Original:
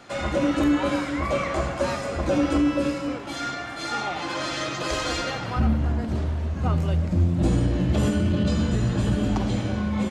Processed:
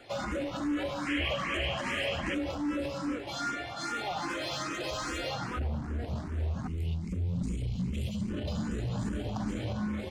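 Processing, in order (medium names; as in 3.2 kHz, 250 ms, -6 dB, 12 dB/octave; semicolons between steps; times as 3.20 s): time-frequency box 6.67–8.30 s, 260–2000 Hz -30 dB; peak limiter -20 dBFS, peak gain reduction 8.5 dB; hard clipper -25 dBFS, distortion -15 dB; painted sound noise, 1.06–2.35 s, 1.6–3.3 kHz -32 dBFS; barber-pole phaser +2.5 Hz; trim -1.5 dB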